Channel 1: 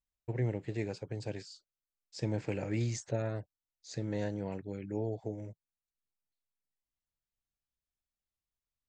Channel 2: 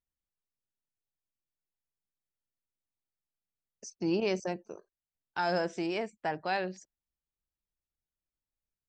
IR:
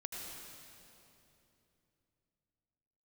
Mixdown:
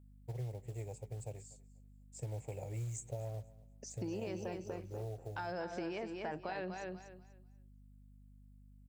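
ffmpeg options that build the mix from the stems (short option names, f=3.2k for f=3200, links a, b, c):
-filter_complex "[0:a]firequalizer=gain_entry='entry(130,0);entry(230,-21);entry(430,-5);entry(770,0);entry(1500,-24);entry(2200,-10);entry(4700,-20);entry(7600,9)':delay=0.05:min_phase=1,acrusher=bits=6:mode=log:mix=0:aa=0.000001,volume=-3dB,asplit=2[a][b];[b]volume=-22dB[c];[1:a]alimiter=level_in=4dB:limit=-24dB:level=0:latency=1,volume=-4dB,lowpass=f=3.4k:p=1,volume=0.5dB,asplit=2[d][e];[e]volume=-6.5dB[f];[c][f]amix=inputs=2:normalize=0,aecho=0:1:244|488|732|976:1|0.23|0.0529|0.0122[g];[a][d][g]amix=inputs=3:normalize=0,aeval=exprs='val(0)+0.00126*(sin(2*PI*50*n/s)+sin(2*PI*2*50*n/s)/2+sin(2*PI*3*50*n/s)/3+sin(2*PI*4*50*n/s)/4+sin(2*PI*5*50*n/s)/5)':c=same,acompressor=threshold=-37dB:ratio=6"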